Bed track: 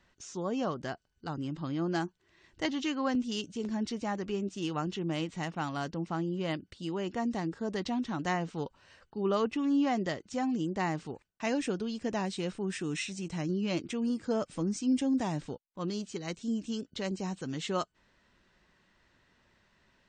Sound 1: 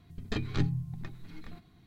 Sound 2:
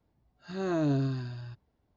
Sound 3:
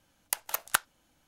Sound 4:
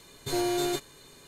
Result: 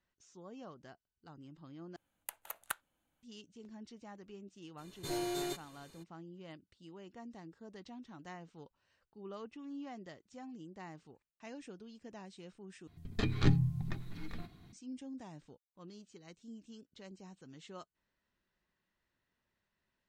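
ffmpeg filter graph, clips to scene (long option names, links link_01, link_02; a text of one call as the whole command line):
ffmpeg -i bed.wav -i cue0.wav -i cue1.wav -i cue2.wav -i cue3.wav -filter_complex "[0:a]volume=-17.5dB[link_01];[3:a]equalizer=frequency=5300:width=2.5:gain=-13.5[link_02];[1:a]dynaudnorm=framelen=230:gausssize=3:maxgain=7dB[link_03];[link_01]asplit=3[link_04][link_05][link_06];[link_04]atrim=end=1.964[link_07];[link_02]atrim=end=1.27,asetpts=PTS-STARTPTS,volume=-12.5dB[link_08];[link_05]atrim=start=3.226:end=12.874[link_09];[link_03]atrim=end=1.86,asetpts=PTS-STARTPTS,volume=-5dB[link_10];[link_06]atrim=start=14.726[link_11];[4:a]atrim=end=1.27,asetpts=PTS-STARTPTS,volume=-9dB,afade=type=in:duration=0.02,afade=type=out:start_time=1.25:duration=0.02,adelay=210357S[link_12];[link_07][link_08]acrossfade=duration=0.004:curve1=hsin:curve2=hsin[link_13];[link_13][link_09]acrossfade=duration=0.004:curve1=hsin:curve2=hsin[link_14];[link_14][link_10]acrossfade=duration=0.004:curve1=hsin:curve2=hsin[link_15];[link_15][link_11]acrossfade=duration=0.004:curve1=hsin:curve2=hsin[link_16];[link_16][link_12]amix=inputs=2:normalize=0" out.wav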